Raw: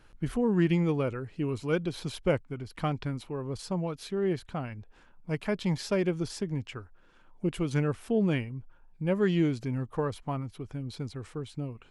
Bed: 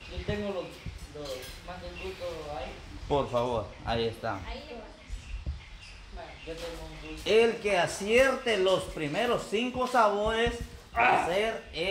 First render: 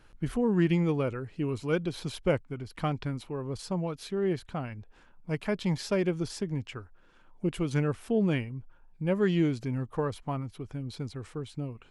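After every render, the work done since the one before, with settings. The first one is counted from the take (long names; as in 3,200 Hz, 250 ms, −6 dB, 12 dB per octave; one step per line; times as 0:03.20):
no processing that can be heard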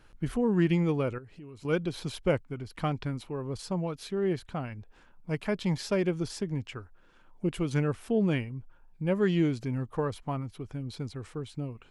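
0:01.18–0:01.65: downward compressor 4 to 1, threshold −46 dBFS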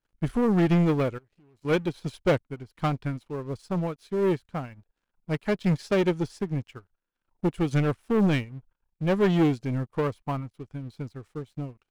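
leveller curve on the samples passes 3
expander for the loud parts 2.5 to 1, over −33 dBFS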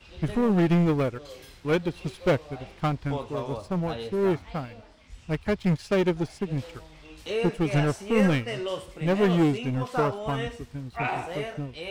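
mix in bed −6 dB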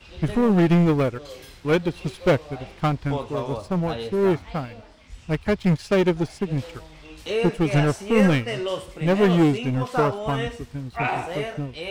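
level +4 dB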